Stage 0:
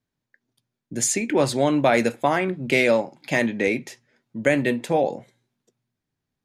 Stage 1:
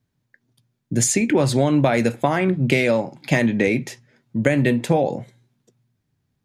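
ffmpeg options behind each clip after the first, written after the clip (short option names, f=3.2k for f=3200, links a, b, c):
-af "acompressor=threshold=-20dB:ratio=6,equalizer=f=110:t=o:w=1.7:g=10,volume=4.5dB"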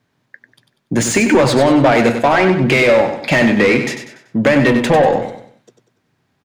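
-filter_complex "[0:a]asplit=2[a][b];[b]highpass=f=720:p=1,volume=24dB,asoftclip=type=tanh:threshold=-2.5dB[c];[a][c]amix=inputs=2:normalize=0,lowpass=f=2k:p=1,volume=-6dB,asplit=2[d][e];[e]aecho=0:1:96|192|288|384:0.398|0.155|0.0606|0.0236[f];[d][f]amix=inputs=2:normalize=0"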